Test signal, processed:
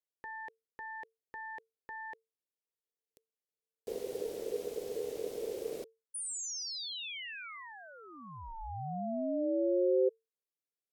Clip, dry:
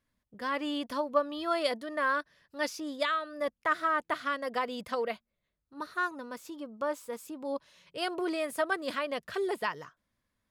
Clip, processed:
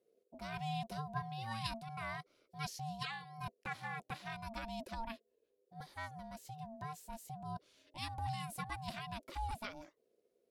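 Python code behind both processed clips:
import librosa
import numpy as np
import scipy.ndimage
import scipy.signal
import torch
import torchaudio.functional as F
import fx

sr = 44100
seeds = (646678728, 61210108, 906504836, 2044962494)

y = fx.tone_stack(x, sr, knobs='10-0-1')
y = y * np.sin(2.0 * np.pi * 450.0 * np.arange(len(y)) / sr)
y = y * 10.0 ** (17.5 / 20.0)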